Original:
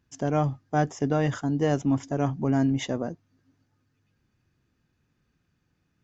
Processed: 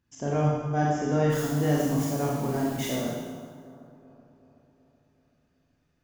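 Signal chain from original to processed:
0:01.30–0:02.96: spike at every zero crossing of −29 dBFS
bucket-brigade delay 377 ms, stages 4,096, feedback 55%, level −16 dB
four-comb reverb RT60 1.3 s, combs from 27 ms, DRR −4.5 dB
level −5.5 dB

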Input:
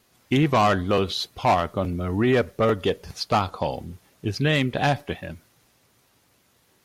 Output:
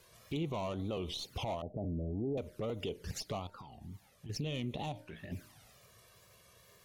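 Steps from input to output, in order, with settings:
stylus tracing distortion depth 0.023 ms
0:01.61–0:02.38: Butterworth low-pass 770 Hz 72 dB per octave
downward compressor 6 to 1, threshold −33 dBFS, peak gain reduction 16 dB
brickwall limiter −32.5 dBFS, peak gain reduction 11.5 dB
0:03.46–0:04.29: tuned comb filter 430 Hz, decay 0.56 s, mix 60%
tape wow and flutter 150 cents
flanger swept by the level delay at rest 2.1 ms, full sweep at −38 dBFS
0:04.92–0:05.32: tuned comb filter 55 Hz, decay 0.29 s, harmonics all, mix 80%
hum removal 304 Hz, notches 3
level +4 dB

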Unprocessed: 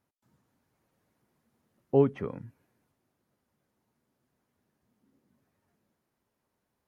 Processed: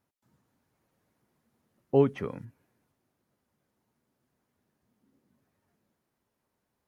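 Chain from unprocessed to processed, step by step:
0:01.94–0:02.45: high-shelf EQ 2,400 Hz +9.5 dB

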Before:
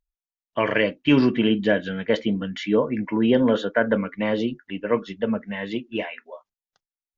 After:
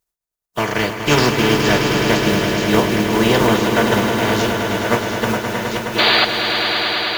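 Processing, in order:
compressing power law on the bin magnitudes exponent 0.39
parametric band 2,800 Hz −6.5 dB 1.5 octaves
sound drawn into the spectrogram noise, 0:05.98–0:06.25, 290–4,800 Hz −18 dBFS
notch comb filter 270 Hz
echo that builds up and dies away 105 ms, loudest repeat 5, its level −9 dB
level +5.5 dB

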